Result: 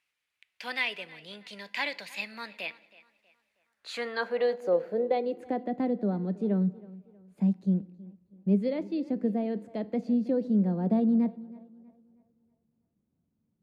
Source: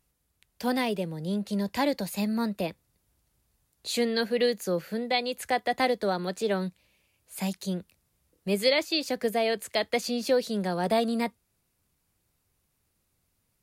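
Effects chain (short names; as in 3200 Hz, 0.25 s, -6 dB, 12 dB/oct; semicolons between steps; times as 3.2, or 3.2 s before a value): tape echo 0.32 s, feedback 41%, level -19.5 dB, low-pass 4400 Hz; band-pass sweep 2400 Hz -> 210 Hz, 3.44–5.79; FDN reverb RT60 0.82 s, low-frequency decay 1.3×, high-frequency decay 0.7×, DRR 16.5 dB; gain +7.5 dB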